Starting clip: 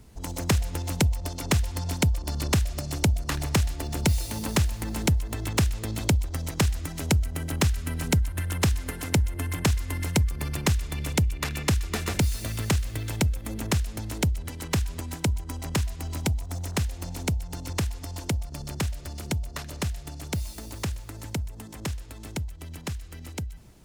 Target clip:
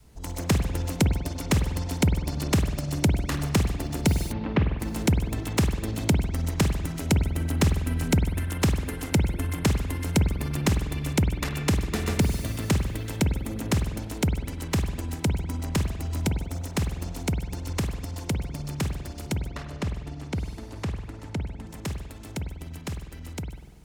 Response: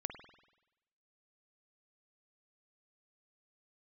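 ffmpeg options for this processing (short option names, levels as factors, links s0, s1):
-filter_complex "[0:a]adynamicequalizer=threshold=0.0141:dfrequency=250:dqfactor=0.8:tfrequency=250:tqfactor=0.8:attack=5:release=100:ratio=0.375:range=3:mode=boostabove:tftype=bell,asplit=3[s0][s1][s2];[s0]afade=t=out:st=4.31:d=0.02[s3];[s1]lowpass=f=2900:w=0.5412,lowpass=f=2900:w=1.3066,afade=t=in:st=4.31:d=0.02,afade=t=out:st=4.79:d=0.02[s4];[s2]afade=t=in:st=4.79:d=0.02[s5];[s3][s4][s5]amix=inputs=3:normalize=0,asettb=1/sr,asplit=3[s6][s7][s8];[s6]atrim=end=19.484[s9];[s7]atrim=start=19.48:end=21.67,asetpts=PTS-STARTPTS,afade=t=in:d=0.004:c=qsin,afade=t=out:st=2.186:d=0.004:c=qsin,aemphasis=mode=reproduction:type=50fm[s10];[s8]atrim=start=21.666[s11];[s9][s10]acrossfade=d=0.004:c1=hsin:c2=qsin[s12];[s12][s11]acrossfade=d=0.004:c1=qsin:c2=hsin[s13];[1:a]atrim=start_sample=2205[s14];[s13][s14]afir=irnorm=-1:irlink=0"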